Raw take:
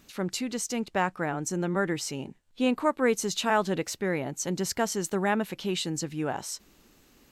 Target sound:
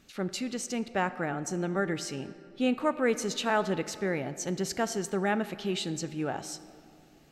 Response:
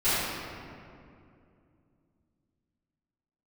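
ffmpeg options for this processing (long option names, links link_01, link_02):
-filter_complex "[0:a]highshelf=frequency=11000:gain=-11,bandreject=frequency=1000:width=6.9,asplit=2[link_01][link_02];[1:a]atrim=start_sample=2205,lowshelf=frequency=150:gain=-11[link_03];[link_02][link_03]afir=irnorm=-1:irlink=0,volume=-27dB[link_04];[link_01][link_04]amix=inputs=2:normalize=0,volume=-2dB"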